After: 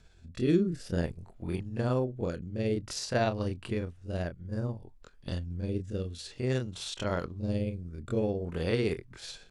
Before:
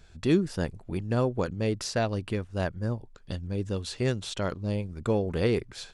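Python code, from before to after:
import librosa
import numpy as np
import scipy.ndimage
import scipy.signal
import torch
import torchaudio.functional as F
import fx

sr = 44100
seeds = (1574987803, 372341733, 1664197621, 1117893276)

y = fx.rotary(x, sr, hz=0.85)
y = fx.stretch_grains(y, sr, factor=1.6, grain_ms=124.0)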